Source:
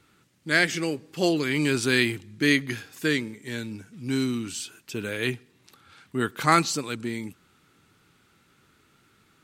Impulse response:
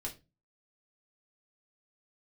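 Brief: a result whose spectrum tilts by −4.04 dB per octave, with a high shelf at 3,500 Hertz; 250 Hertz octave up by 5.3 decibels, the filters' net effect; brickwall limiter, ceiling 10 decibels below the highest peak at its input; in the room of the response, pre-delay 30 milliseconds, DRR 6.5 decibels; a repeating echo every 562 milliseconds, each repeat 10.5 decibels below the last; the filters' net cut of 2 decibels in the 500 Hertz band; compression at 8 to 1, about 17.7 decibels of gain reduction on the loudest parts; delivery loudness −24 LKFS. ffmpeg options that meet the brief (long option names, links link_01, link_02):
-filter_complex "[0:a]equalizer=frequency=250:width_type=o:gain=9,equalizer=frequency=500:width_type=o:gain=-8,highshelf=frequency=3500:gain=6.5,acompressor=threshold=-32dB:ratio=8,alimiter=level_in=4.5dB:limit=-24dB:level=0:latency=1,volume=-4.5dB,aecho=1:1:562|1124|1686:0.299|0.0896|0.0269,asplit=2[link_01][link_02];[1:a]atrim=start_sample=2205,adelay=30[link_03];[link_02][link_03]afir=irnorm=-1:irlink=0,volume=-5.5dB[link_04];[link_01][link_04]amix=inputs=2:normalize=0,volume=13dB"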